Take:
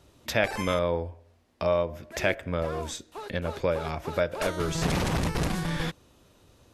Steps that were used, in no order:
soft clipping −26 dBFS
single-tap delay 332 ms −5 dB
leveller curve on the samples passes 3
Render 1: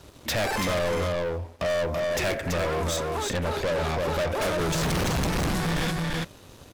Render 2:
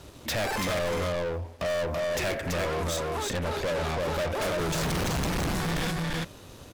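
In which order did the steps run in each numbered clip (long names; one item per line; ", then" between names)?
soft clipping, then single-tap delay, then leveller curve on the samples
single-tap delay, then soft clipping, then leveller curve on the samples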